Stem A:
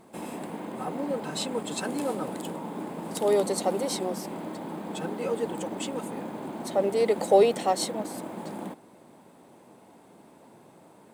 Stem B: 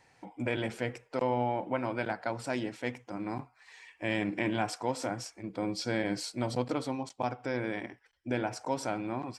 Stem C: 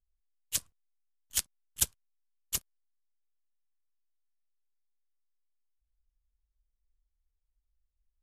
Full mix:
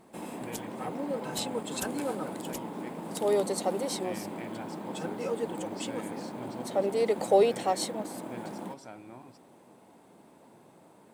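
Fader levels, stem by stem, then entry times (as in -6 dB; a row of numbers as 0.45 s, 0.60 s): -3.0 dB, -13.0 dB, -11.0 dB; 0.00 s, 0.00 s, 0.00 s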